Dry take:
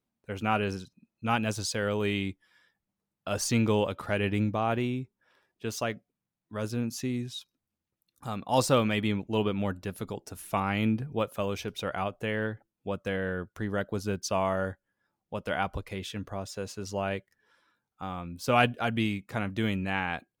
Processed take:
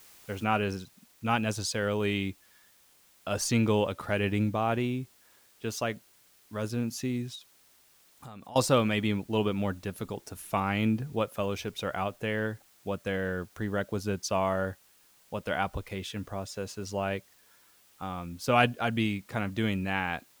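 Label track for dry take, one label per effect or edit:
0.440000	0.440000	noise floor change −55 dB −62 dB
7.350000	8.560000	downward compressor, threshold −42 dBFS

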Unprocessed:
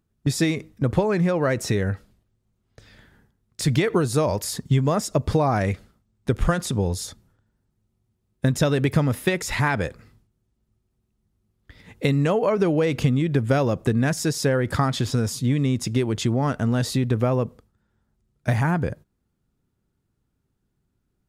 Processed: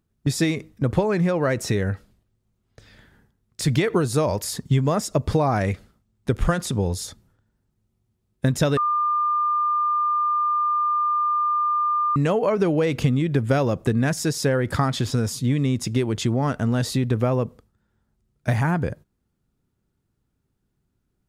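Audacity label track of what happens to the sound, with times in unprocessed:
8.770000	12.160000	beep over 1,200 Hz −18.5 dBFS

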